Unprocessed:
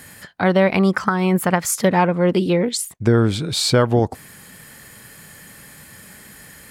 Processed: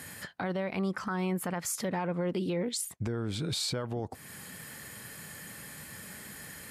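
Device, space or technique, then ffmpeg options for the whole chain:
podcast mastering chain: -af "highpass=61,acompressor=threshold=-28dB:ratio=2.5,alimiter=limit=-21dB:level=0:latency=1:release=15,volume=-2.5dB" -ar 32000 -c:a libmp3lame -b:a 96k

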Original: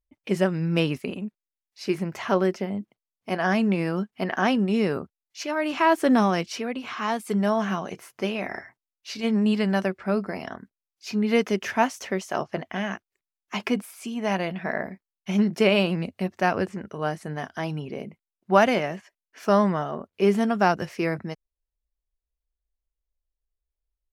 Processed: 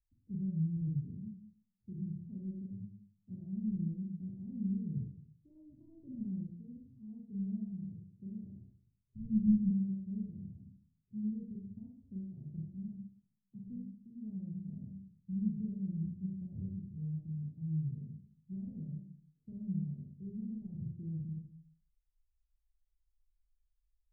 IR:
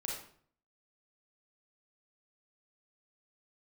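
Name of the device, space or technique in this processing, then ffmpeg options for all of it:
club heard from the street: -filter_complex "[0:a]alimiter=limit=-15.5dB:level=0:latency=1:release=32,lowpass=frequency=130:width=0.5412,lowpass=frequency=130:width=1.3066[link_01];[1:a]atrim=start_sample=2205[link_02];[link_01][link_02]afir=irnorm=-1:irlink=0,asplit=3[link_03][link_04][link_05];[link_03]afade=type=out:start_time=9.14:duration=0.02[link_06];[link_04]asubboost=boost=11:cutoff=120,afade=type=in:start_time=9.14:duration=0.02,afade=type=out:start_time=9.69:duration=0.02[link_07];[link_05]afade=type=in:start_time=9.69:duration=0.02[link_08];[link_06][link_07][link_08]amix=inputs=3:normalize=0,volume=3.5dB"

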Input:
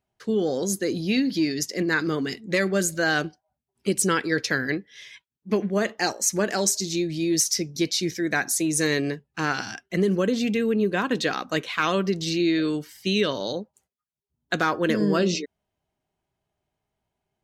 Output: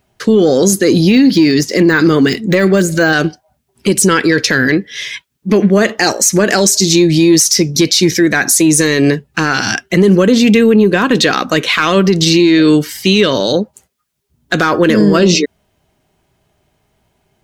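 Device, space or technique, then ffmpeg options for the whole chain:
mastering chain: -filter_complex "[0:a]asettb=1/sr,asplit=3[link_01][link_02][link_03];[link_01]atrim=end=1.104[link_04];[link_02]atrim=start=1.1:end=3.13,asetpts=PTS-STARTPTS,afade=type=in:duration=0.004:curve=qsin,afade=type=out:start_time=2.026:duration=0.004:curve=qsin,deesser=0.95[link_05];[link_03]atrim=start=3.126[link_06];[link_04][link_05]acrossfade=duration=0.004:curve1=hsin:curve2=qsin[link_07];[link_07][link_06]acrossfade=duration=0.004:curve1=qsin:curve2=hsin,equalizer=frequency=830:width_type=o:width=0.77:gain=-3,acompressor=threshold=-29dB:ratio=1.5,asoftclip=type=tanh:threshold=-15dB,alimiter=level_in=22dB:limit=-1dB:release=50:level=0:latency=1,volume=-1dB"

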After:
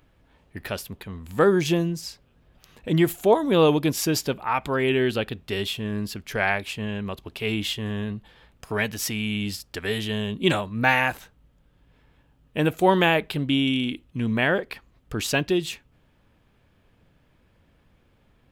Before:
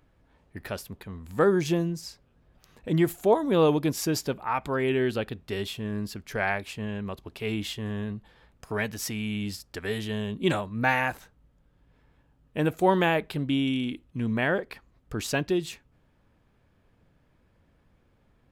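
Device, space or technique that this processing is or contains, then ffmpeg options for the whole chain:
presence and air boost: -af "equalizer=frequency=3000:width_type=o:width=0.93:gain=5,highshelf=frequency=11000:gain=4.5,volume=3dB"

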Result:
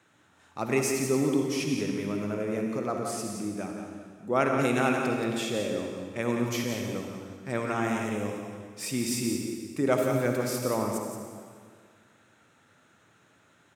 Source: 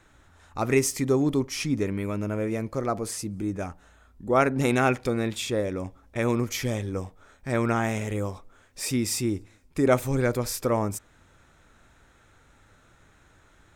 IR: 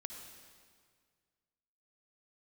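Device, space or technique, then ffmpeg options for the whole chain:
PA in a hall: -filter_complex "[0:a]highpass=frequency=120:width=0.5412,highpass=frequency=120:width=1.3066,equalizer=frequency=2800:width_type=o:width=0.28:gain=4,aecho=1:1:175:0.422[link_01];[1:a]atrim=start_sample=2205[link_02];[link_01][link_02]afir=irnorm=-1:irlink=0"

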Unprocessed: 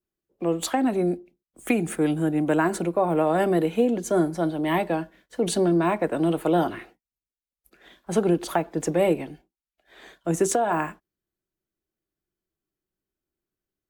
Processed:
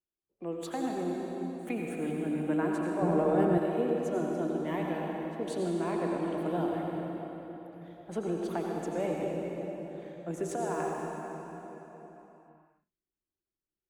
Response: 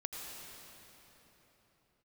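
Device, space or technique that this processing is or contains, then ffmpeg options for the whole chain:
swimming-pool hall: -filter_complex "[1:a]atrim=start_sample=2205[link_01];[0:a][link_01]afir=irnorm=-1:irlink=0,highshelf=frequency=3800:gain=-7,asettb=1/sr,asplit=3[link_02][link_03][link_04];[link_02]atrim=end=3.024[link_05];[link_03]atrim=start=3.02:end=3.58,asetpts=PTS-STARTPTS,afade=type=in:duration=0.004:curve=qsin,afade=type=out:start_time=0.556:duration=0.004:curve=qsin,lowshelf=frequency=430:gain=9.5[link_06];[link_04]atrim=start=3.576[link_07];[link_05][link_06]acrossfade=duration=0.004:curve1=hsin:curve2=qsin[link_08];[link_08][link_07]acrossfade=duration=0.004:curve1=qsin:curve2=hsin,volume=-9dB"

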